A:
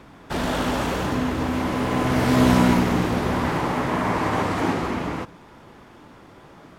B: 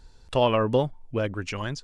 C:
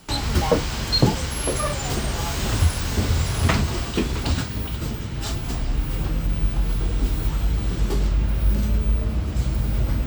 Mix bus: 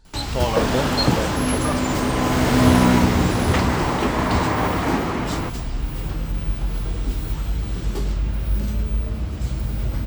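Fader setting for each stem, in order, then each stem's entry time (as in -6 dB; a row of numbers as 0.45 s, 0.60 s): +1.5 dB, -2.5 dB, -2.0 dB; 0.25 s, 0.00 s, 0.05 s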